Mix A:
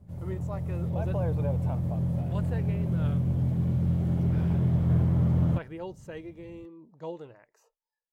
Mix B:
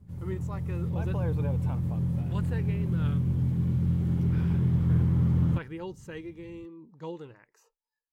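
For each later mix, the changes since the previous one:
speech +3.0 dB
master: add parametric band 640 Hz −13 dB 0.55 octaves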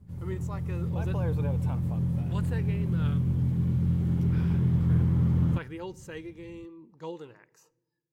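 speech: add bass and treble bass −5 dB, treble +4 dB
reverb: on, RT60 1.2 s

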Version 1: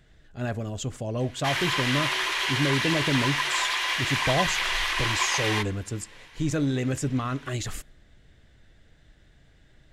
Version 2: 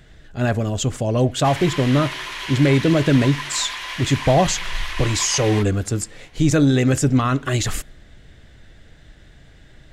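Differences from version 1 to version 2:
speech +10.0 dB
background: send off

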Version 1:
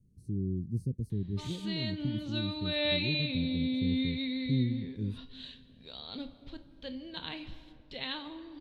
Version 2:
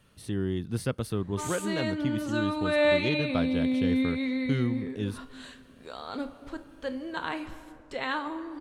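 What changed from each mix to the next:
speech: remove elliptic band-stop filter 390–7,300 Hz, stop band 40 dB
master: remove drawn EQ curve 180 Hz 0 dB, 340 Hz −9 dB, 860 Hz −12 dB, 1,300 Hz −17 dB, 3,800 Hz +6 dB, 7,700 Hz −20 dB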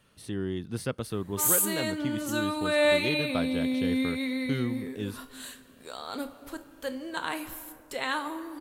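background: remove high-frequency loss of the air 120 metres
master: add low-shelf EQ 170 Hz −6.5 dB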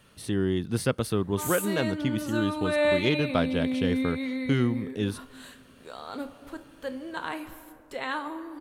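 speech +6.0 dB
background: add high-shelf EQ 4,100 Hz −11.5 dB

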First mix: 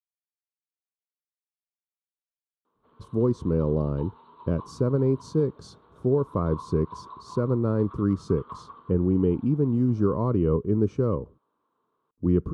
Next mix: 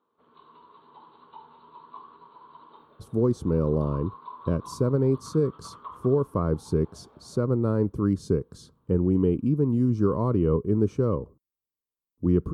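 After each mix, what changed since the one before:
background: entry −2.65 s
master: remove high-frequency loss of the air 70 metres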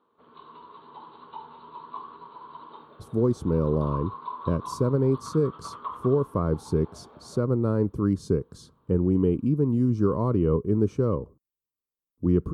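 background +6.0 dB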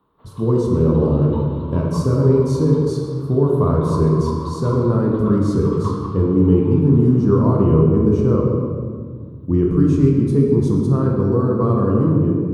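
speech: entry −2.75 s
reverb: on, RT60 1.9 s

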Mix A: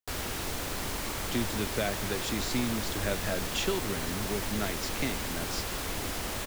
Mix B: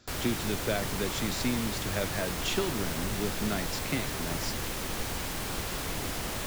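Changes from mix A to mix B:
speech: entry −1.10 s
master: add parametric band 150 Hz +5.5 dB 0.48 octaves

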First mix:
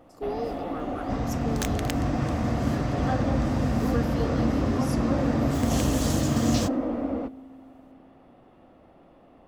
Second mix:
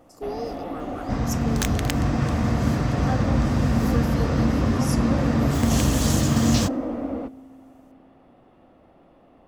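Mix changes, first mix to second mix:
speech: add high shelf with overshoot 4,400 Hz +7 dB, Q 1.5
second sound +5.0 dB

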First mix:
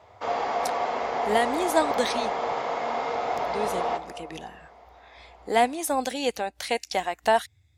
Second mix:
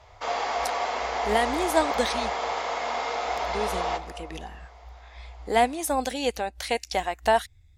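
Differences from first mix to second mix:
speech: remove high-pass filter 90 Hz 24 dB per octave
background: add spectral tilt +3 dB per octave

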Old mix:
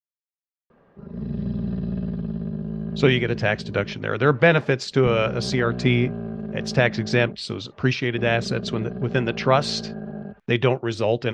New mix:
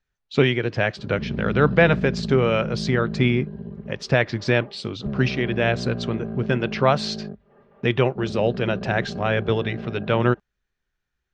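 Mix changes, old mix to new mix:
speech: entry −2.65 s
master: add high-shelf EQ 8,200 Hz −10.5 dB

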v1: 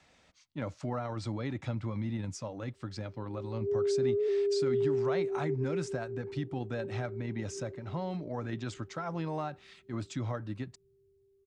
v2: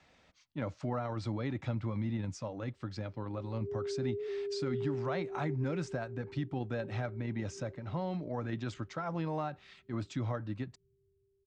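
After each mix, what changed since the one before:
background: add Gaussian smoothing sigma 24 samples
master: add high-frequency loss of the air 73 metres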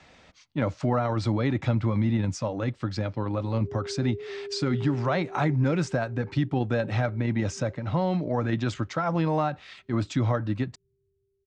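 speech +10.5 dB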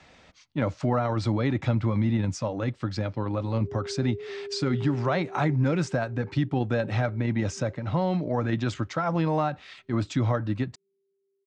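background: add elliptic high-pass filter 190 Hz, stop band 40 dB

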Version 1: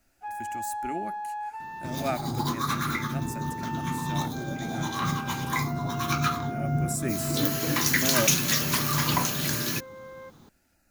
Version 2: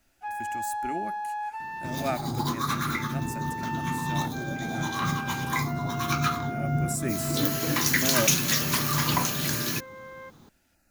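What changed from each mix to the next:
first sound: add tilt shelving filter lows −6.5 dB, about 650 Hz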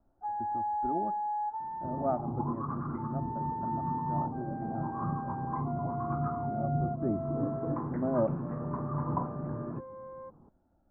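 second sound −4.5 dB
master: add Butterworth low-pass 1,100 Hz 36 dB per octave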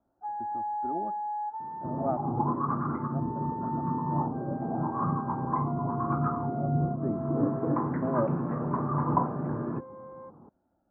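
second sound +8.0 dB
master: add high-pass filter 190 Hz 6 dB per octave

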